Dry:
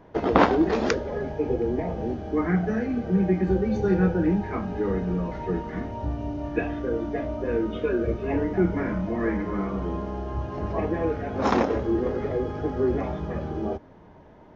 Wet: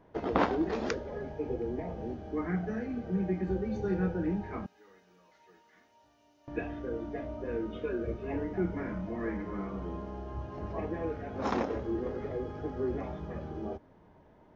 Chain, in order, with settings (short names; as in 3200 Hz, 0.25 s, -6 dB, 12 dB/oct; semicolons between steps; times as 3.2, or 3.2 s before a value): 4.66–6.48 differentiator; gain -9 dB